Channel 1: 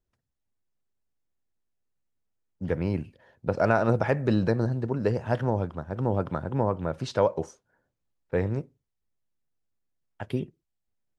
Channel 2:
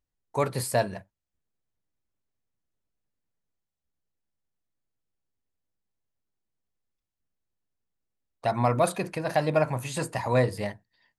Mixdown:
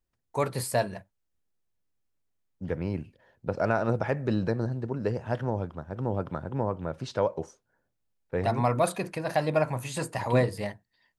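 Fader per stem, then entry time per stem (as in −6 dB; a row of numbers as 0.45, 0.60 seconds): −3.5, −1.5 decibels; 0.00, 0.00 seconds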